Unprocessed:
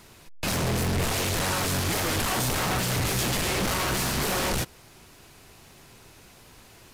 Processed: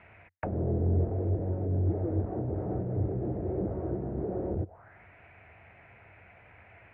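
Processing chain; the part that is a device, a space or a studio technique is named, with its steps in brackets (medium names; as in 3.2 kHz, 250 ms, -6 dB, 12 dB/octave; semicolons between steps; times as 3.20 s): envelope filter bass rig (touch-sensitive low-pass 360–2700 Hz down, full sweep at -25 dBFS; cabinet simulation 60–2100 Hz, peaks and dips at 91 Hz +9 dB, 150 Hz -6 dB, 250 Hz -9 dB, 370 Hz -7 dB, 680 Hz +7 dB, 1.1 kHz -6 dB); 1.35–1.86 s: peaking EQ 1.2 kHz -5.5 dB 1.1 oct; trim -3.5 dB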